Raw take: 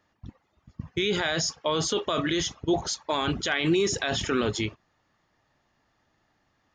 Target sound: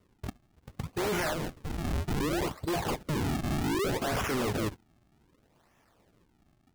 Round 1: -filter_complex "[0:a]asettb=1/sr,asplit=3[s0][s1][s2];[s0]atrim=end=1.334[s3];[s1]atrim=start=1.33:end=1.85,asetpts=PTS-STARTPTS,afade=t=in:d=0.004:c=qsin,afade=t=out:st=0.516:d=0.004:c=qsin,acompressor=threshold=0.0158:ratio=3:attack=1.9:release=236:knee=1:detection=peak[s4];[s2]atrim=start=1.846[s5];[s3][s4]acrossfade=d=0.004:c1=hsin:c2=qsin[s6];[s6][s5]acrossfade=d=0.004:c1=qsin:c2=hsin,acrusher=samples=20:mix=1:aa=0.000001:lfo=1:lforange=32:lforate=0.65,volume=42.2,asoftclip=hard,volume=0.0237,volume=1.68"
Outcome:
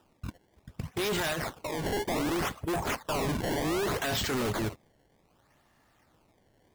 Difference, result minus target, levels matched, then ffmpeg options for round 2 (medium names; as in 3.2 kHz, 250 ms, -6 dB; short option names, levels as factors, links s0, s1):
decimation with a swept rate: distortion -8 dB
-filter_complex "[0:a]asettb=1/sr,asplit=3[s0][s1][s2];[s0]atrim=end=1.334[s3];[s1]atrim=start=1.33:end=1.85,asetpts=PTS-STARTPTS,afade=t=in:d=0.004:c=qsin,afade=t=out:st=0.516:d=0.004:c=qsin,acompressor=threshold=0.0158:ratio=3:attack=1.9:release=236:knee=1:detection=peak[s4];[s2]atrim=start=1.846[s5];[s3][s4]acrossfade=d=0.004:c1=hsin:c2=qsin[s6];[s6][s5]acrossfade=d=0.004:c1=qsin:c2=hsin,acrusher=samples=51:mix=1:aa=0.000001:lfo=1:lforange=81.6:lforate=0.65,volume=42.2,asoftclip=hard,volume=0.0237,volume=1.68"